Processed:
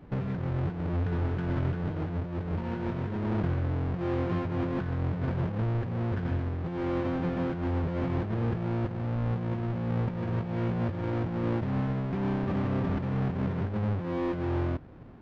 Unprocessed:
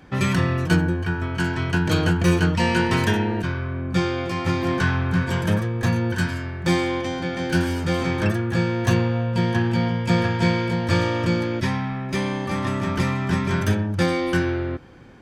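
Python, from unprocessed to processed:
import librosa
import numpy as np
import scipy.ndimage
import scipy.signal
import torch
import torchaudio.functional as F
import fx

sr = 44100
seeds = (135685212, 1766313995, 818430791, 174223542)

y = fx.halfwave_hold(x, sr)
y = fx.over_compress(y, sr, threshold_db=-20.0, ratio=-1.0)
y = fx.spacing_loss(y, sr, db_at_10k=44)
y = y * 10.0 ** (-8.5 / 20.0)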